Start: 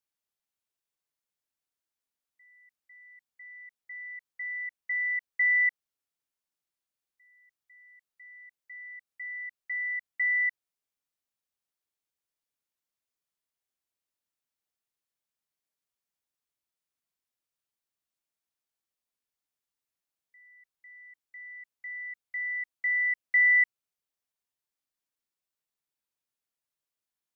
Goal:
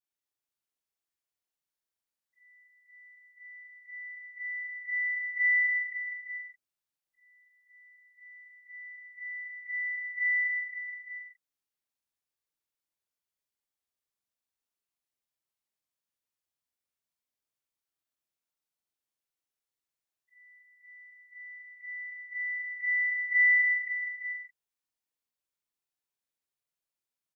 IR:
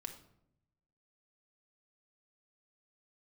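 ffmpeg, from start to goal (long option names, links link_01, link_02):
-af "afftfilt=real='re':imag='-im':win_size=4096:overlap=0.75,aecho=1:1:240|432|585.6|708.5|806.8:0.631|0.398|0.251|0.158|0.1"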